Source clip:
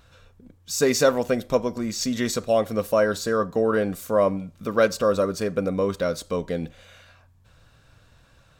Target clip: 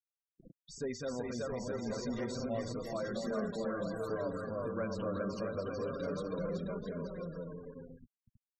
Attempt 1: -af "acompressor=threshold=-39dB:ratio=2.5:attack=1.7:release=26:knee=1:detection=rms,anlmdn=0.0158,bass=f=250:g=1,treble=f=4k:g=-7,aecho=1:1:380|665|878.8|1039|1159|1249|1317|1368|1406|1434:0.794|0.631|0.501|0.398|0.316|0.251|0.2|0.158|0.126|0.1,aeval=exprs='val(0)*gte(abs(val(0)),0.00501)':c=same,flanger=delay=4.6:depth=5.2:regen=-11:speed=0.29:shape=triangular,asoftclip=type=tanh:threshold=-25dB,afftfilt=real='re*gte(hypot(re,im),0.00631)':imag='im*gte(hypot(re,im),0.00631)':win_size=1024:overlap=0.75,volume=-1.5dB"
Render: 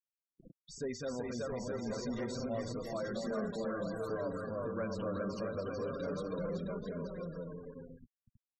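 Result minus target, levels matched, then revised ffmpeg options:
soft clip: distortion +13 dB
-af "acompressor=threshold=-39dB:ratio=2.5:attack=1.7:release=26:knee=1:detection=rms,anlmdn=0.0158,bass=f=250:g=1,treble=f=4k:g=-7,aecho=1:1:380|665|878.8|1039|1159|1249|1317|1368|1406|1434:0.794|0.631|0.501|0.398|0.316|0.251|0.2|0.158|0.126|0.1,aeval=exprs='val(0)*gte(abs(val(0)),0.00501)':c=same,flanger=delay=4.6:depth=5.2:regen=-11:speed=0.29:shape=triangular,asoftclip=type=tanh:threshold=-17.5dB,afftfilt=real='re*gte(hypot(re,im),0.00631)':imag='im*gte(hypot(re,im),0.00631)':win_size=1024:overlap=0.75,volume=-1.5dB"

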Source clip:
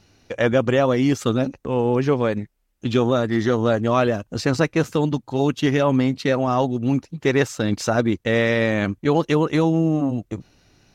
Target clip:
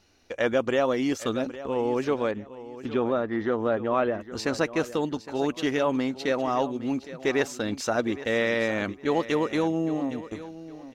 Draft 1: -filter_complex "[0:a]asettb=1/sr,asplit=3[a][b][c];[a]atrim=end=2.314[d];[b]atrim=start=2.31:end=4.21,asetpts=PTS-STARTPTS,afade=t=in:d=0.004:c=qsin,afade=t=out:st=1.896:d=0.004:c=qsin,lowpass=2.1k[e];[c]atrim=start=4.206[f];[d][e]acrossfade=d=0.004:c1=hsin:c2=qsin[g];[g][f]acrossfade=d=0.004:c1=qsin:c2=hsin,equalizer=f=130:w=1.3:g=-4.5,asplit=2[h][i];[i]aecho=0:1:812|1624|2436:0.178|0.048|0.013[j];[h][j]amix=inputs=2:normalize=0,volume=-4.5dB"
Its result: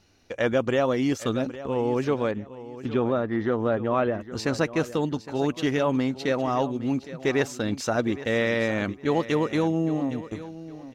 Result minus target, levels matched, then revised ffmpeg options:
125 Hz band +5.5 dB
-filter_complex "[0:a]asettb=1/sr,asplit=3[a][b][c];[a]atrim=end=2.314[d];[b]atrim=start=2.31:end=4.21,asetpts=PTS-STARTPTS,afade=t=in:d=0.004:c=qsin,afade=t=out:st=1.896:d=0.004:c=qsin,lowpass=2.1k[e];[c]atrim=start=4.206[f];[d][e]acrossfade=d=0.004:c1=hsin:c2=qsin[g];[g][f]acrossfade=d=0.004:c1=qsin:c2=hsin,equalizer=f=130:w=1.3:g=-12.5,asplit=2[h][i];[i]aecho=0:1:812|1624|2436:0.178|0.048|0.013[j];[h][j]amix=inputs=2:normalize=0,volume=-4.5dB"

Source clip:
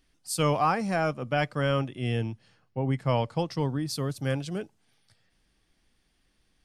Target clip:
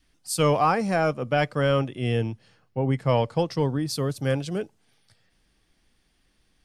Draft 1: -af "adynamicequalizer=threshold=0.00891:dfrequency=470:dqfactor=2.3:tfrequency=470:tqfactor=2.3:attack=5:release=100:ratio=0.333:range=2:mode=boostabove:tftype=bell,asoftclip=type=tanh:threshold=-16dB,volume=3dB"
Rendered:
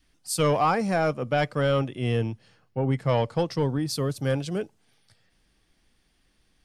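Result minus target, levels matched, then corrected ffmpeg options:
soft clip: distortion +14 dB
-af "adynamicequalizer=threshold=0.00891:dfrequency=470:dqfactor=2.3:tfrequency=470:tqfactor=2.3:attack=5:release=100:ratio=0.333:range=2:mode=boostabove:tftype=bell,asoftclip=type=tanh:threshold=-7.5dB,volume=3dB"

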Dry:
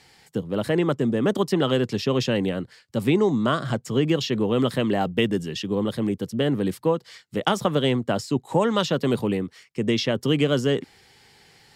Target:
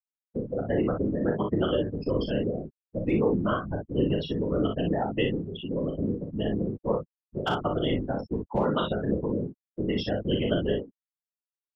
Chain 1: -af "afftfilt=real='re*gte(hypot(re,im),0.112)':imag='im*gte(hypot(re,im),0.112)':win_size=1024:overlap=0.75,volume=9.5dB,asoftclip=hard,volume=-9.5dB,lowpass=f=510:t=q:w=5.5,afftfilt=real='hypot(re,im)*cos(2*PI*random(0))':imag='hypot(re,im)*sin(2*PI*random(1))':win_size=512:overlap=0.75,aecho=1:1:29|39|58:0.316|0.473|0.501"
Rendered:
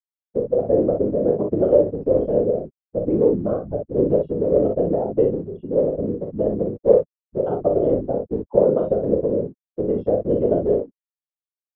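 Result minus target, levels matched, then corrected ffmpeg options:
500 Hz band +3.0 dB
-af "afftfilt=real='re*gte(hypot(re,im),0.112)':imag='im*gte(hypot(re,im),0.112)':win_size=1024:overlap=0.75,volume=9.5dB,asoftclip=hard,volume=-9.5dB,afftfilt=real='hypot(re,im)*cos(2*PI*random(0))':imag='hypot(re,im)*sin(2*PI*random(1))':win_size=512:overlap=0.75,aecho=1:1:29|39|58:0.316|0.473|0.501"

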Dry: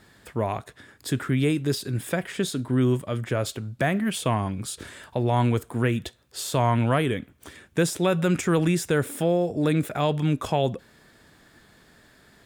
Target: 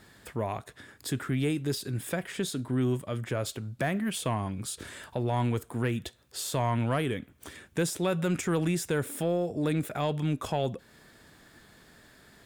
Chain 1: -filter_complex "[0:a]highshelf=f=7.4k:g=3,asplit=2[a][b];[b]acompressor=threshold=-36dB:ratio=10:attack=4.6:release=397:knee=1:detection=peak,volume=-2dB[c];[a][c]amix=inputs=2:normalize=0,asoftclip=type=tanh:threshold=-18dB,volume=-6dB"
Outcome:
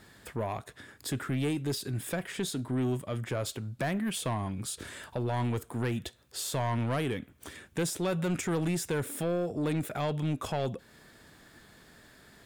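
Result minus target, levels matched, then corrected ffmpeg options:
soft clip: distortion +12 dB
-filter_complex "[0:a]highshelf=f=7.4k:g=3,asplit=2[a][b];[b]acompressor=threshold=-36dB:ratio=10:attack=4.6:release=397:knee=1:detection=peak,volume=-2dB[c];[a][c]amix=inputs=2:normalize=0,asoftclip=type=tanh:threshold=-9.5dB,volume=-6dB"

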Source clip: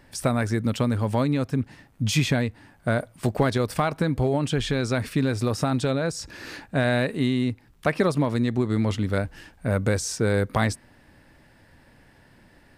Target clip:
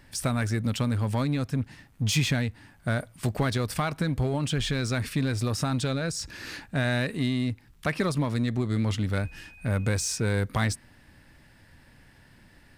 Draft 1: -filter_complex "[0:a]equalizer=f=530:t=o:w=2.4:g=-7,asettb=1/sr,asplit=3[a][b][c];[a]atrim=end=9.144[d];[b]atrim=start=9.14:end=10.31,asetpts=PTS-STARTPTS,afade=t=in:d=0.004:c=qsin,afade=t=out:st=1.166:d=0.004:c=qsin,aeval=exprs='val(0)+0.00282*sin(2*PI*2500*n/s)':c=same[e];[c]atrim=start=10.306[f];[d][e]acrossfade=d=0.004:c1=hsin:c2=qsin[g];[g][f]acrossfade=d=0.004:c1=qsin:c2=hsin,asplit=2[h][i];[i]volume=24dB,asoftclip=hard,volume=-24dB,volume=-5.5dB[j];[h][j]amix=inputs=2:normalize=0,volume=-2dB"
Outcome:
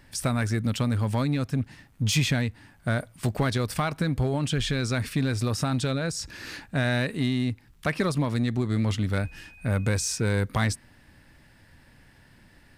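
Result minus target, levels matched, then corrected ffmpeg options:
overloaded stage: distortion -5 dB
-filter_complex "[0:a]equalizer=f=530:t=o:w=2.4:g=-7,asettb=1/sr,asplit=3[a][b][c];[a]atrim=end=9.144[d];[b]atrim=start=9.14:end=10.31,asetpts=PTS-STARTPTS,afade=t=in:d=0.004:c=qsin,afade=t=out:st=1.166:d=0.004:c=qsin,aeval=exprs='val(0)+0.00282*sin(2*PI*2500*n/s)':c=same[e];[c]atrim=start=10.306[f];[d][e]acrossfade=d=0.004:c1=hsin:c2=qsin[g];[g][f]acrossfade=d=0.004:c1=qsin:c2=hsin,asplit=2[h][i];[i]volume=30dB,asoftclip=hard,volume=-30dB,volume=-5.5dB[j];[h][j]amix=inputs=2:normalize=0,volume=-2dB"

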